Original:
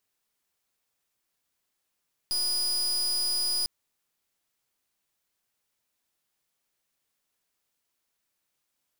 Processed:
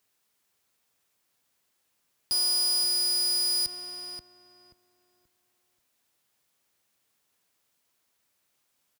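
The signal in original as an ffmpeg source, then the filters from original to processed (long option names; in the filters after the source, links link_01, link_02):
-f lavfi -i "aevalsrc='0.0422*(2*lt(mod(4940*t,1),0.35)-1)':duration=1.35:sample_rate=44100"
-filter_complex "[0:a]asplit=2[link_01][link_02];[link_02]adelay=531,lowpass=frequency=1700:poles=1,volume=-6dB,asplit=2[link_03][link_04];[link_04]adelay=531,lowpass=frequency=1700:poles=1,volume=0.3,asplit=2[link_05][link_06];[link_06]adelay=531,lowpass=frequency=1700:poles=1,volume=0.3,asplit=2[link_07][link_08];[link_08]adelay=531,lowpass=frequency=1700:poles=1,volume=0.3[link_09];[link_01][link_03][link_05][link_07][link_09]amix=inputs=5:normalize=0,asplit=2[link_10][link_11];[link_11]alimiter=level_in=10dB:limit=-24dB:level=0:latency=1,volume=-10dB,volume=-2dB[link_12];[link_10][link_12]amix=inputs=2:normalize=0,highpass=58"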